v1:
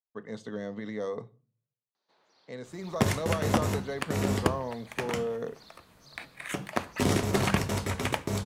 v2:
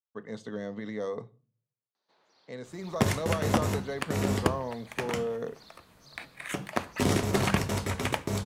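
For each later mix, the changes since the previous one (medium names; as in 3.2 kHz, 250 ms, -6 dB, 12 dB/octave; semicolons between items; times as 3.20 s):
no change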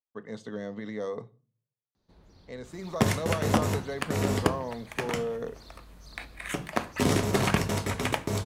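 first sound: remove band-pass 700–6200 Hz; second sound: send on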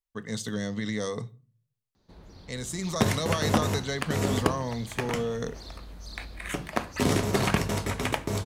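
speech: remove band-pass filter 590 Hz, Q 0.77; first sound +7.5 dB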